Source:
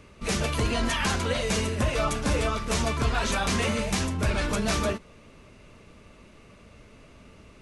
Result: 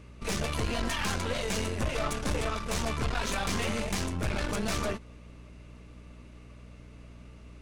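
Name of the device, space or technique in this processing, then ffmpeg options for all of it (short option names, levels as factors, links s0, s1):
valve amplifier with mains hum: -af "aeval=exprs='(tanh(20*val(0)+0.7)-tanh(0.7))/20':c=same,aeval=exprs='val(0)+0.00398*(sin(2*PI*60*n/s)+sin(2*PI*2*60*n/s)/2+sin(2*PI*3*60*n/s)/3+sin(2*PI*4*60*n/s)/4+sin(2*PI*5*60*n/s)/5)':c=same"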